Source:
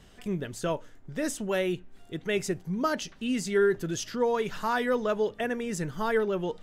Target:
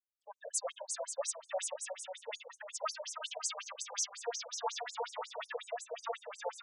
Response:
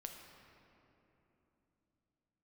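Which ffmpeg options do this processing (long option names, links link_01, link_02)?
-filter_complex "[0:a]acrossover=split=560|2100[link_01][link_02][link_03];[link_03]aexciter=amount=4.1:drive=3.9:freq=3200[link_04];[link_01][link_02][link_04]amix=inputs=3:normalize=0,asoftclip=type=hard:threshold=-28dB,acompressor=threshold=-35dB:ratio=2.5,agate=range=-33dB:threshold=-33dB:ratio=3:detection=peak[link_05];[1:a]atrim=start_sample=2205,atrim=end_sample=3528[link_06];[link_05][link_06]afir=irnorm=-1:irlink=0,afftdn=noise_reduction=35:noise_floor=-51,acontrast=25,alimiter=level_in=10dB:limit=-24dB:level=0:latency=1:release=12,volume=-10dB,adynamicequalizer=threshold=0.00112:dfrequency=1600:dqfactor=1.5:tfrequency=1600:tqfactor=1.5:attack=5:release=100:ratio=0.375:range=2.5:mode=cutabove:tftype=bell,aecho=1:1:320|528|663.2|751.1|808.2:0.631|0.398|0.251|0.158|0.1,afftfilt=real='re*between(b*sr/1024,630*pow(7900/630,0.5+0.5*sin(2*PI*5.5*pts/sr))/1.41,630*pow(7900/630,0.5+0.5*sin(2*PI*5.5*pts/sr))*1.41)':imag='im*between(b*sr/1024,630*pow(7900/630,0.5+0.5*sin(2*PI*5.5*pts/sr))/1.41,630*pow(7900/630,0.5+0.5*sin(2*PI*5.5*pts/sr))*1.41)':win_size=1024:overlap=0.75,volume=10dB"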